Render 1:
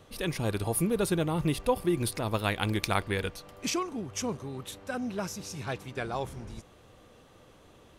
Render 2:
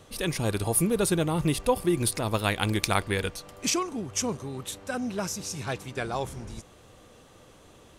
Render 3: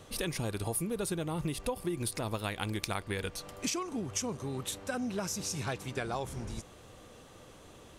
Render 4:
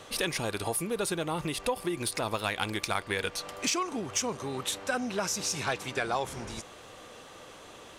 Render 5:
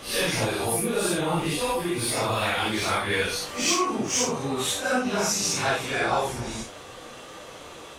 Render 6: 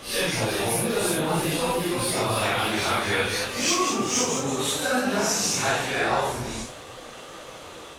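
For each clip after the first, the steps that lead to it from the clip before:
peaking EQ 7.9 kHz +6 dB 1.2 oct; trim +2.5 dB
compression 6:1, threshold -31 dBFS, peak gain reduction 13 dB
overdrive pedal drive 14 dB, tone 5.3 kHz, clips at -12.5 dBFS
phase randomisation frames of 200 ms; trim +6.5 dB
ever faster or slower copies 398 ms, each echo +1 st, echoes 3, each echo -6 dB

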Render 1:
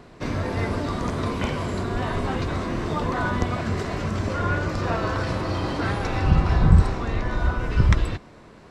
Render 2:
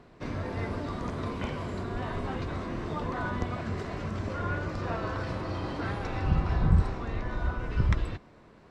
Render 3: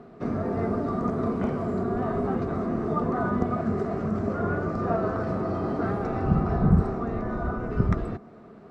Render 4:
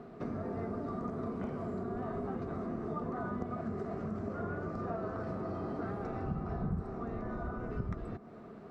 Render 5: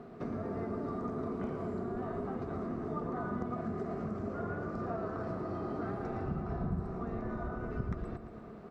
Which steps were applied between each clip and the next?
treble shelf 5.9 kHz -8.5 dB; trim -7.5 dB
dynamic bell 3.2 kHz, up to -8 dB, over -58 dBFS, Q 1.2; small resonant body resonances 220/400/660/1200 Hz, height 16 dB, ringing for 25 ms; trim -5 dB
compression 2.5:1, threshold -37 dBFS, peak gain reduction 15.5 dB; trim -2 dB
feedback delay 114 ms, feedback 58%, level -10 dB

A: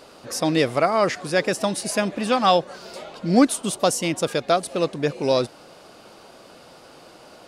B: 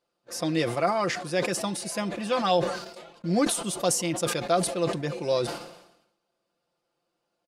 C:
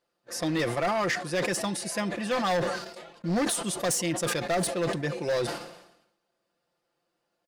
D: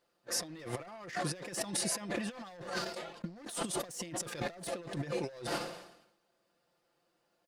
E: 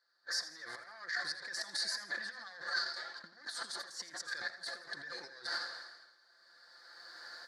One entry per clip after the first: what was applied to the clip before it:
gate -36 dBFS, range -26 dB; comb 5.8 ms, depth 58%; decay stretcher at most 69 dB/s; trim -8 dB
hard clipper -23 dBFS, distortion -11 dB; peaking EQ 1.8 kHz +6.5 dB 0.29 oct
compressor with a negative ratio -34 dBFS, ratio -0.5; trim -4 dB
recorder AGC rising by 18 dB/s; two resonant band-passes 2.7 kHz, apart 1.4 oct; modulated delay 83 ms, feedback 45%, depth 69 cents, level -13 dB; trim +8.5 dB

